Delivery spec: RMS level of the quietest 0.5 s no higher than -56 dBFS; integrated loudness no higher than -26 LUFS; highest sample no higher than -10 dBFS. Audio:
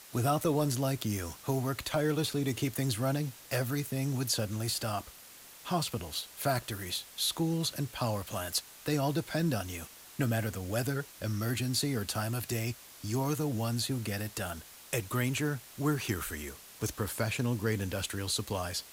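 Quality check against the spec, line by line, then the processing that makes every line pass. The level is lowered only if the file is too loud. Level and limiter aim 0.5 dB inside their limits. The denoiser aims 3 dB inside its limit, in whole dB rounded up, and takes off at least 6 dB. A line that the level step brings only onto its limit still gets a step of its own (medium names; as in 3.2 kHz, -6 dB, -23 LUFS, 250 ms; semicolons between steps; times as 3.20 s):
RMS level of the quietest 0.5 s -52 dBFS: fail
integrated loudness -33.0 LUFS: pass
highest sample -17.5 dBFS: pass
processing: noise reduction 7 dB, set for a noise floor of -52 dBFS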